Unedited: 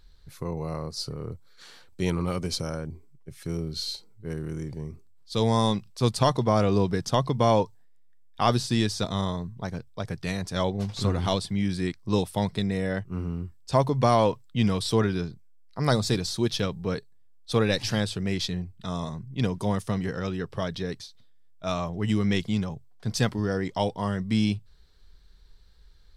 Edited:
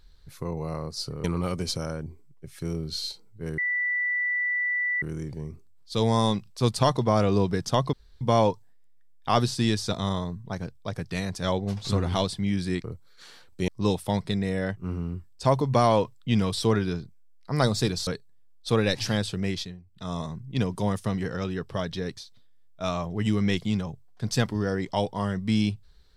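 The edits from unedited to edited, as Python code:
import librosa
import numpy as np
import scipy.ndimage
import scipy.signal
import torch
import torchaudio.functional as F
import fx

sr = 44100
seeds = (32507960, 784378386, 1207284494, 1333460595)

y = fx.edit(x, sr, fx.move(start_s=1.24, length_s=0.84, to_s=11.96),
    fx.insert_tone(at_s=4.42, length_s=1.44, hz=1970.0, db=-23.5),
    fx.insert_room_tone(at_s=7.33, length_s=0.28),
    fx.cut(start_s=16.35, length_s=0.55),
    fx.fade_down_up(start_s=18.3, length_s=0.68, db=-14.5, fade_s=0.3), tone=tone)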